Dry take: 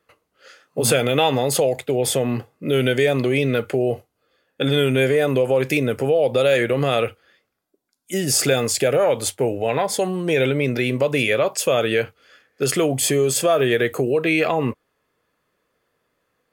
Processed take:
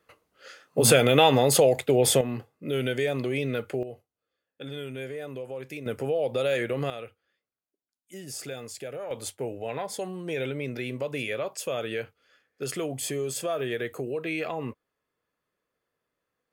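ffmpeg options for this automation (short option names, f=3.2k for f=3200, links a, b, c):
-af "asetnsamples=n=441:p=0,asendcmd='2.21 volume volume -9dB;3.83 volume volume -18.5dB;5.86 volume volume -9dB;6.9 volume volume -19dB;9.11 volume volume -12dB',volume=-0.5dB"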